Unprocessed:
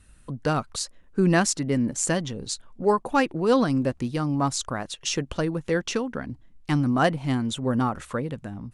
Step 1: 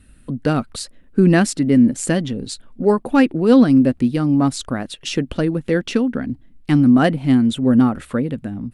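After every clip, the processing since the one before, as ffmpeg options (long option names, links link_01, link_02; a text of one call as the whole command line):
ffmpeg -i in.wav -af "equalizer=frequency=250:width_type=o:width=0.67:gain=8,equalizer=frequency=1000:width_type=o:width=0.67:gain=-7,equalizer=frequency=6300:width_type=o:width=0.67:gain=-9,volume=5dB" out.wav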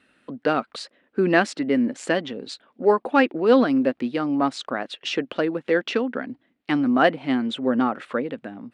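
ffmpeg -i in.wav -af "highpass=440,lowpass=3500,volume=1.5dB" out.wav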